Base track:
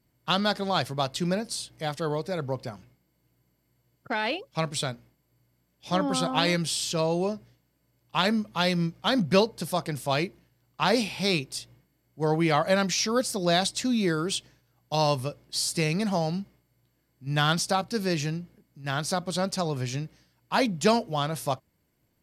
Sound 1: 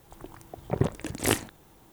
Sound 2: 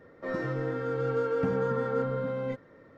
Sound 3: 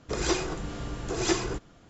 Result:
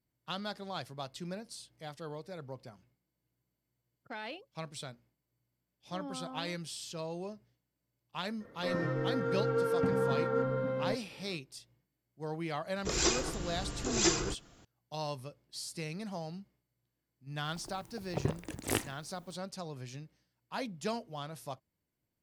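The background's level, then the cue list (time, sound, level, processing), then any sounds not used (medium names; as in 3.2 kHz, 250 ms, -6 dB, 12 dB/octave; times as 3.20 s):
base track -14 dB
8.40 s: add 2 -2 dB
12.76 s: add 3 -5 dB + treble shelf 4.1 kHz +11 dB
17.44 s: add 1 -7.5 dB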